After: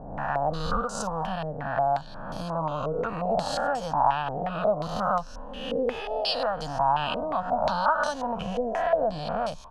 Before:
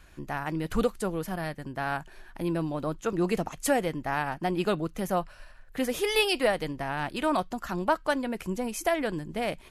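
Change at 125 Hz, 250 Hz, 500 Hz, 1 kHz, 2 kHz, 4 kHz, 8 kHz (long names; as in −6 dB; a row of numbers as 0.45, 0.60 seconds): 0.0, −4.5, +2.0, +6.5, −1.5, +0.5, −4.5 decibels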